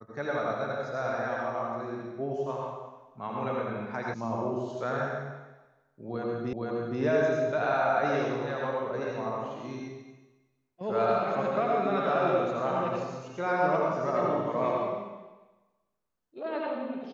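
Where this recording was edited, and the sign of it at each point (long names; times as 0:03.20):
0:04.14: cut off before it has died away
0:06.53: the same again, the last 0.47 s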